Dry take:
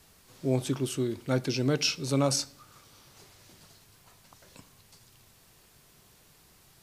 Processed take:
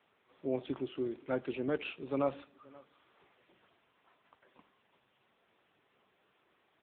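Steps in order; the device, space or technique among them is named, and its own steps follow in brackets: satellite phone (band-pass 300–3000 Hz; delay 526 ms -23.5 dB; trim -3 dB; AMR-NB 6.7 kbps 8 kHz)

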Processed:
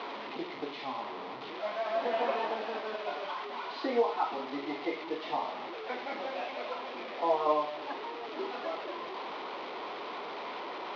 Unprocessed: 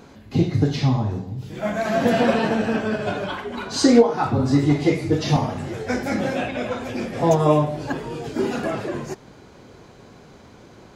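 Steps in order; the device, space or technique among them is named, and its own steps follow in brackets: digital answering machine (band-pass 370–3400 Hz; one-bit delta coder 32 kbps, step -24 dBFS; cabinet simulation 380–3700 Hz, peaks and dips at 520 Hz -3 dB, 1 kHz +5 dB, 1.6 kHz -8 dB, 2.7 kHz -3 dB); trim -8 dB

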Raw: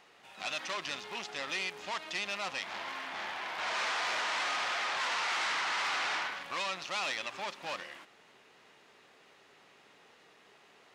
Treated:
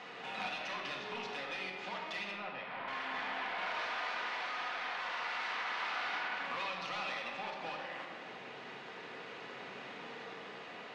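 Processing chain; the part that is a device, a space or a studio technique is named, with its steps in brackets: AM radio (band-pass 110–3900 Hz; compression 6:1, threshold -51 dBFS, peak gain reduction 18 dB; saturation -39 dBFS, distortion -29 dB; tremolo 0.31 Hz, depth 19%); 2.31–2.88 s: distance through air 340 m; band-passed feedback delay 156 ms, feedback 77%, band-pass 700 Hz, level -10 dB; simulated room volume 1100 m³, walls mixed, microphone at 1.9 m; trim +10.5 dB

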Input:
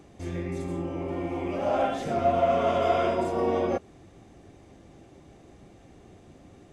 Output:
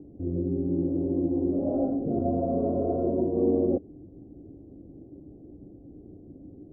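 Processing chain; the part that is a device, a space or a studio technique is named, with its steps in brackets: under water (low-pass 490 Hz 24 dB/octave; peaking EQ 290 Hz +9.5 dB 0.29 oct); trim +2.5 dB

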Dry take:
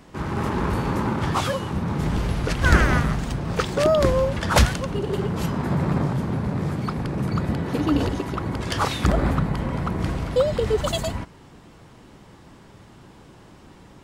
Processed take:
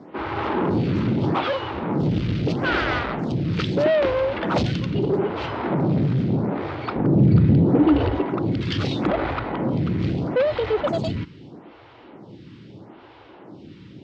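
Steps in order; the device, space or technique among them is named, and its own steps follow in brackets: vibe pedal into a guitar amplifier (lamp-driven phase shifter 0.78 Hz; valve stage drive 24 dB, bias 0.3; cabinet simulation 110–4200 Hz, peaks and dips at 110 Hz +4 dB, 320 Hz +5 dB, 1.1 kHz -4 dB, 1.7 kHz -4 dB); 6.96–8.26 s: tilt EQ -2.5 dB/octave; trim +8 dB

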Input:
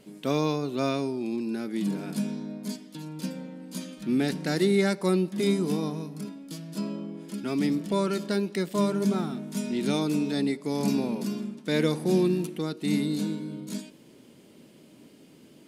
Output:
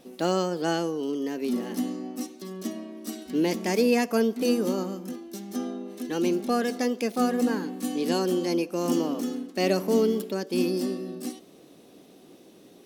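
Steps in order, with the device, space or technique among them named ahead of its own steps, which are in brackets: nightcore (tape speed +22%); trim +1 dB

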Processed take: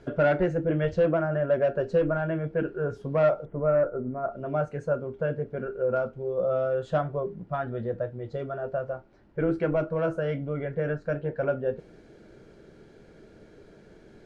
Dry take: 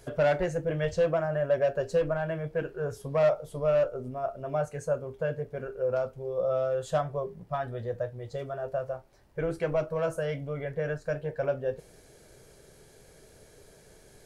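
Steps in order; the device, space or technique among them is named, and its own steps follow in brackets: 3.45–4.32 s: steep low-pass 2.2 kHz 48 dB/octave; inside a cardboard box (low-pass 3.3 kHz 12 dB/octave; small resonant body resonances 220/310/1400 Hz, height 11 dB, ringing for 45 ms)

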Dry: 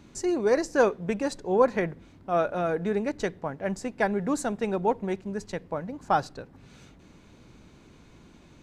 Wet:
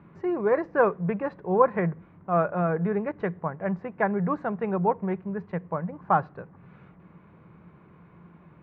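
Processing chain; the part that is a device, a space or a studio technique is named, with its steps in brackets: bass cabinet (cabinet simulation 86–2100 Hz, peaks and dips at 170 Hz +10 dB, 260 Hz -9 dB, 1.1 kHz +7 dB)

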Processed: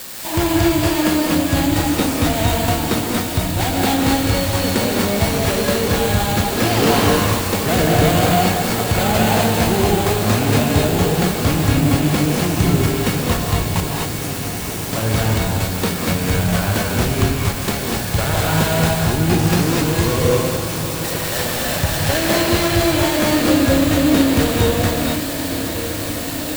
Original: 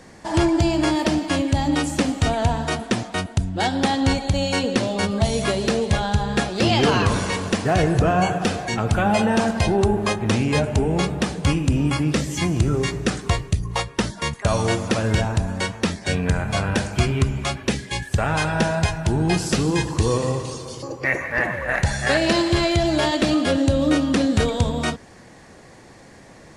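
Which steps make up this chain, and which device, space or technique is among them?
13.80–14.93 s: inverse Chebyshev high-pass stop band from 1.2 kHz, stop band 80 dB; echo that smears into a reverb 1193 ms, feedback 70%, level -10.5 dB; budget class-D amplifier (dead-time distortion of 0.25 ms; zero-crossing glitches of -14 dBFS); gated-style reverb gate 280 ms rising, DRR -1.5 dB

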